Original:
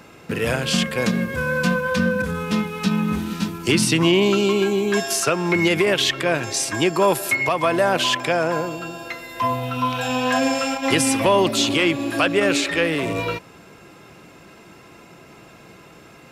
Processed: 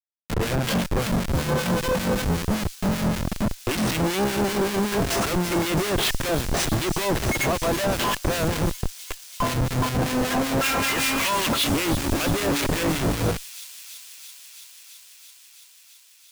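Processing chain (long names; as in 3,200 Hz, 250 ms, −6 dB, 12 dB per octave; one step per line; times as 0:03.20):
0:10.61–0:11.64: flat-topped bell 2,200 Hz +14 dB 2.4 octaves
comparator with hysteresis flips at −21 dBFS
two-band tremolo in antiphase 5.2 Hz, depth 70%, crossover 1,500 Hz
delay with a high-pass on its return 333 ms, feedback 82%, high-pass 4,900 Hz, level −8 dB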